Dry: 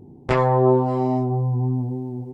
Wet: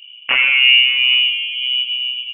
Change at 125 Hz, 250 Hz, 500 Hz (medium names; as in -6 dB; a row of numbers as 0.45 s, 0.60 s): under -35 dB, under -25 dB, under -20 dB